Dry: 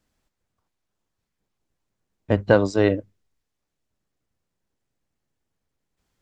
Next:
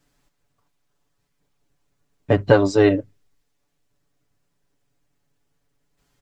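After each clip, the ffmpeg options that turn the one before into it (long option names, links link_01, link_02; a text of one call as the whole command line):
ffmpeg -i in.wav -filter_complex "[0:a]aecho=1:1:7:0.9,asplit=2[link_01][link_02];[link_02]acompressor=threshold=-23dB:ratio=6,volume=1dB[link_03];[link_01][link_03]amix=inputs=2:normalize=0,volume=-2dB" out.wav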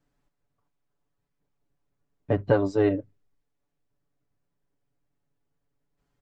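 ffmpeg -i in.wav -af "highshelf=frequency=2300:gain=-11,volume=-6.5dB" out.wav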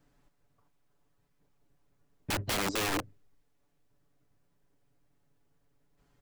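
ffmpeg -i in.wav -af "acompressor=threshold=-27dB:ratio=8,aeval=exprs='(mod(39.8*val(0)+1,2)-1)/39.8':channel_layout=same,volume=6.5dB" out.wav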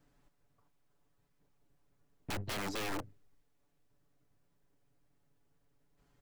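ffmpeg -i in.wav -af "aeval=exprs='(tanh(79.4*val(0)+0.65)-tanh(0.65))/79.4':channel_layout=same,volume=1.5dB" out.wav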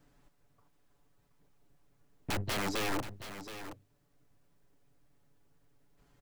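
ffmpeg -i in.wav -af "aecho=1:1:724:0.266,volume=4.5dB" out.wav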